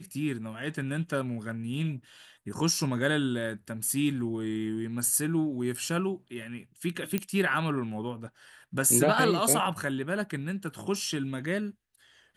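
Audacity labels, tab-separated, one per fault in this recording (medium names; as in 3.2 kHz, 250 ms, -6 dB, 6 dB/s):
7.180000	7.180000	pop -14 dBFS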